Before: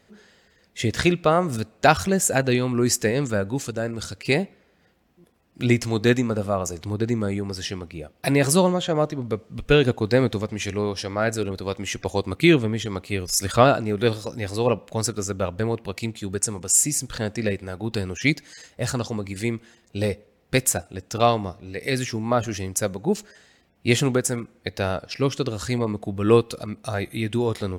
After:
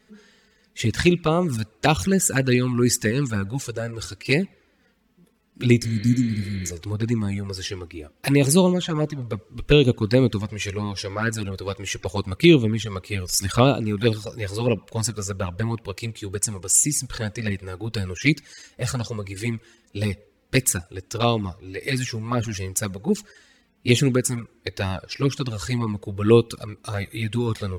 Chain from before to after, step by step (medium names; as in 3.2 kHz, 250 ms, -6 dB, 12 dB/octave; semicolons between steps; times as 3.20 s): touch-sensitive flanger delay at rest 4.7 ms, full sweep at -14.5 dBFS; spectral replace 5.85–6.68 s, 300–4500 Hz before; peaking EQ 670 Hz -8 dB 0.57 oct; trim +3.5 dB